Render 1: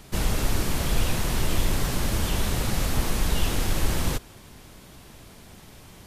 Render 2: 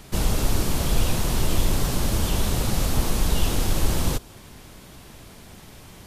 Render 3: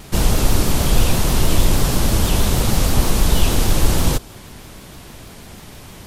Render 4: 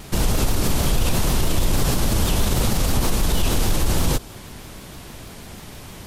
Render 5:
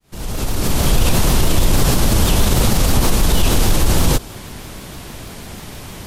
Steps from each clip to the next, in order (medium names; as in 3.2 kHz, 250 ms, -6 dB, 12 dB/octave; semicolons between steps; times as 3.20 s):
dynamic bell 1.9 kHz, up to -5 dB, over -49 dBFS, Q 1.3; trim +2.5 dB
vibrato 6.3 Hz 74 cents; trim +6.5 dB
peak limiter -10 dBFS, peak gain reduction 8.5 dB
fade-in on the opening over 0.94 s; trim +5.5 dB